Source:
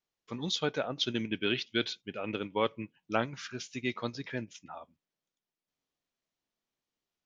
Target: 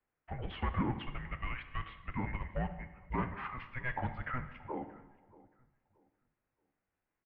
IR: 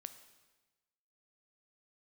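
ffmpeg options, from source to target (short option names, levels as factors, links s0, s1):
-filter_complex "[0:a]asettb=1/sr,asplit=3[s0][s1][s2];[s0]atrim=end=1.014[s3];[s1]atrim=start=1.01:end=3.18,asetpts=PTS-STARTPTS,afade=t=in:d=0.004:c=qsin,afade=t=out:st=2.166:d=0.004:c=qsin,acompressor=threshold=0.02:ratio=6[s4];[s2]atrim=start=3.176[s5];[s3][s4]acrossfade=d=0.004:c1=hsin:c2=qsin[s6];[s6][s5]acrossfade=d=0.004:c1=qsin:c2=hsin,asoftclip=type=tanh:threshold=0.0251,asplit=2[s7][s8];[s8]adelay=627,lowpass=f=1600:p=1,volume=0.1,asplit=2[s9][s10];[s10]adelay=627,lowpass=f=1600:p=1,volume=0.32,asplit=2[s11][s12];[s12]adelay=627,lowpass=f=1600:p=1,volume=0.32[s13];[s7][s9][s11][s13]amix=inputs=4:normalize=0[s14];[1:a]atrim=start_sample=2205[s15];[s14][s15]afir=irnorm=-1:irlink=0,highpass=f=320:t=q:w=0.5412,highpass=f=320:t=q:w=1.307,lowpass=f=2500:t=q:w=0.5176,lowpass=f=2500:t=q:w=0.7071,lowpass=f=2500:t=q:w=1.932,afreqshift=-380,volume=3.76"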